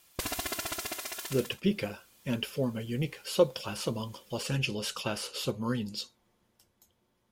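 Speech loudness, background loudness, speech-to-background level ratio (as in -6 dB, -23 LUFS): -33.0 LUFS, -36.0 LUFS, 3.0 dB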